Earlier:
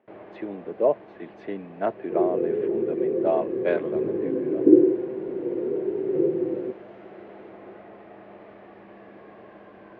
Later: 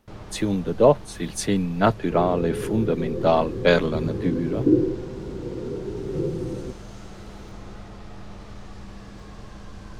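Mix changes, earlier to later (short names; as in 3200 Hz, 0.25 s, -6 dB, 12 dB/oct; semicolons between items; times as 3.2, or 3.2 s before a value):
speech +8.0 dB; second sound -3.0 dB; master: remove speaker cabinet 320–2300 Hz, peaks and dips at 360 Hz +6 dB, 640 Hz +6 dB, 910 Hz -3 dB, 1300 Hz -7 dB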